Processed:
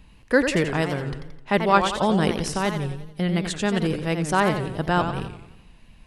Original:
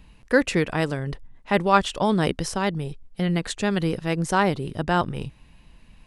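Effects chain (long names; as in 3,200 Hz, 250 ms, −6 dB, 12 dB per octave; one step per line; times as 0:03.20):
feedback echo with a swinging delay time 88 ms, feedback 49%, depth 171 cents, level −8 dB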